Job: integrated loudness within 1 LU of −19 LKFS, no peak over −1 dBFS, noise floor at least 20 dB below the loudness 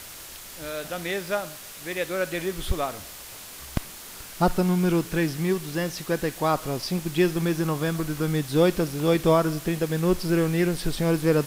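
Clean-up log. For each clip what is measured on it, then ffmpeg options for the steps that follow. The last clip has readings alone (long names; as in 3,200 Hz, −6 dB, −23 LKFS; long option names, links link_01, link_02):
background noise floor −42 dBFS; target noise floor −46 dBFS; integrated loudness −25.5 LKFS; sample peak −9.0 dBFS; target loudness −19.0 LKFS
→ -af "afftdn=noise_reduction=6:noise_floor=-42"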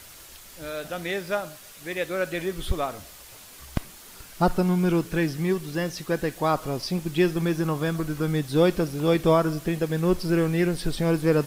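background noise floor −47 dBFS; integrated loudness −25.5 LKFS; sample peak −9.5 dBFS; target loudness −19.0 LKFS
→ -af "volume=6.5dB"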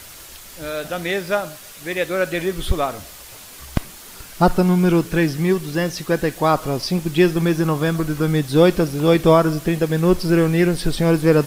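integrated loudness −19.0 LKFS; sample peak −3.0 dBFS; background noise floor −40 dBFS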